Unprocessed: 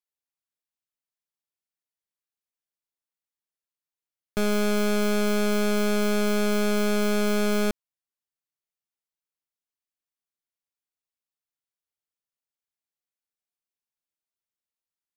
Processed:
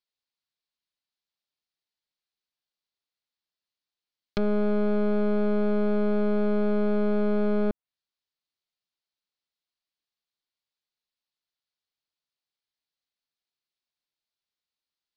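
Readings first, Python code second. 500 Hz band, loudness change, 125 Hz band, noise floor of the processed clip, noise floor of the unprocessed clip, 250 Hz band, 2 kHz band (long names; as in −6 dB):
−0.5 dB, −1.5 dB, can't be measured, below −85 dBFS, below −85 dBFS, 0.0 dB, −10.0 dB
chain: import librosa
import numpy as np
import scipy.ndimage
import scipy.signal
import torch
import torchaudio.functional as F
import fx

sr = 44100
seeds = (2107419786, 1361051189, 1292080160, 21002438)

y = fx.env_lowpass_down(x, sr, base_hz=870.0, full_db=-25.5)
y = fx.lowpass_res(y, sr, hz=4300.0, q=2.8)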